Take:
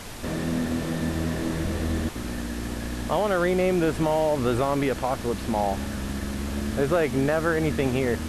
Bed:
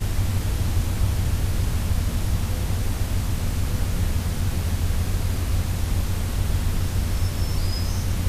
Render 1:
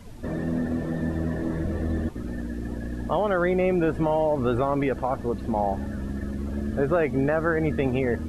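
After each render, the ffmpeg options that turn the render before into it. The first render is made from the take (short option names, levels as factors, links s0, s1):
-af "afftdn=nr=16:nf=-34"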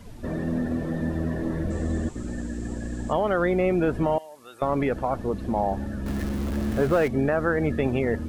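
-filter_complex "[0:a]asettb=1/sr,asplit=3[s0][s1][s2];[s0]atrim=end=1.704[s3];[s1]atrim=start=1.7:end=3.13,asetpts=PTS-STARTPTS,afade=t=in:d=0.004:c=qsin,afade=t=out:st=1.426:d=0.004:c=qsin,lowpass=f=7600:t=q:w=6.4[s4];[s2]atrim=start=3.126[s5];[s3][s4]acrossfade=d=0.004:c1=hsin:c2=qsin[s6];[s6][s5]acrossfade=d=0.004:c1=qsin:c2=hsin,asettb=1/sr,asplit=3[s7][s8][s9];[s7]atrim=end=4.184[s10];[s8]atrim=start=4.18:end=4.62,asetpts=PTS-STARTPTS,afade=t=in:d=0.004:c=qsin,afade=t=out:st=0.436:d=0.004:c=qsin,aderivative[s11];[s9]atrim=start=4.616[s12];[s10][s11]acrossfade=d=0.004:c1=hsin:c2=qsin[s13];[s13][s12]acrossfade=d=0.004:c1=qsin:c2=hsin,asettb=1/sr,asplit=3[s14][s15][s16];[s14]atrim=end=6.064[s17];[s15]atrim=start=6.06:end=7.08,asetpts=PTS-STARTPTS,afade=t=in:d=0.004:c=qsin,afade=t=out:st=1.016:d=0.004:c=qsin,aeval=exprs='val(0)+0.5*0.0282*sgn(val(0))':c=same[s18];[s16]atrim=start=7.076[s19];[s17][s18]acrossfade=d=0.004:c1=hsin:c2=qsin[s20];[s20][s19]acrossfade=d=0.004:c1=qsin:c2=hsin"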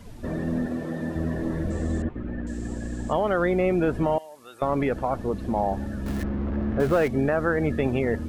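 -filter_complex "[0:a]asettb=1/sr,asplit=3[s0][s1][s2];[s0]atrim=end=0.664[s3];[s1]atrim=start=0.66:end=1.16,asetpts=PTS-STARTPTS,afade=t=in:d=0.004:c=qsin,afade=t=out:st=0.496:d=0.004:c=qsin,highpass=f=200:p=1[s4];[s2]atrim=start=1.156[s5];[s3][s4]acrossfade=d=0.004:c1=hsin:c2=qsin[s6];[s6][s5]acrossfade=d=0.004:c1=qsin:c2=hsin,asettb=1/sr,asplit=3[s7][s8][s9];[s7]atrim=end=2.024[s10];[s8]atrim=start=2.02:end=2.47,asetpts=PTS-STARTPTS,afade=t=in:d=0.004:c=qsin,afade=t=out:st=0.446:d=0.004:c=qsin,lowpass=f=2600:w=0.5412,lowpass=f=2600:w=1.3066[s11];[s9]atrim=start=2.466[s12];[s10][s11]acrossfade=d=0.004:c1=hsin:c2=qsin[s13];[s13][s12]acrossfade=d=0.004:c1=qsin:c2=hsin,asettb=1/sr,asplit=3[s14][s15][s16];[s14]atrim=end=6.234[s17];[s15]atrim=start=6.23:end=6.8,asetpts=PTS-STARTPTS,afade=t=in:d=0.004:c=qsin,afade=t=out:st=0.566:d=0.004:c=qsin,lowpass=1700[s18];[s16]atrim=start=6.796[s19];[s17][s18]acrossfade=d=0.004:c1=hsin:c2=qsin[s20];[s20][s19]acrossfade=d=0.004:c1=qsin:c2=hsin"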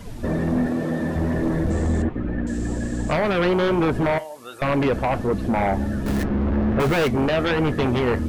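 -af "aeval=exprs='0.251*sin(PI/2*2.51*val(0)/0.251)':c=same,flanger=delay=6.3:depth=4.5:regen=-69:speed=1.3:shape=sinusoidal"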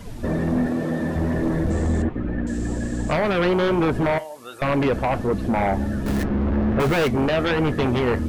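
-af anull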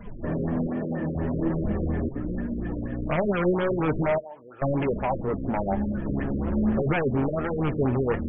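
-af "flanger=delay=4.8:depth=2.6:regen=46:speed=1.2:shape=sinusoidal,afftfilt=real='re*lt(b*sr/1024,560*pow(3500/560,0.5+0.5*sin(2*PI*4.2*pts/sr)))':imag='im*lt(b*sr/1024,560*pow(3500/560,0.5+0.5*sin(2*PI*4.2*pts/sr)))':win_size=1024:overlap=0.75"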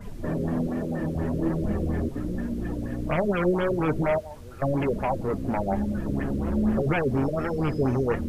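-filter_complex "[1:a]volume=0.0891[s0];[0:a][s0]amix=inputs=2:normalize=0"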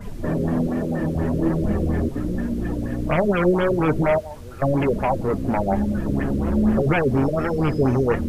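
-af "volume=1.78"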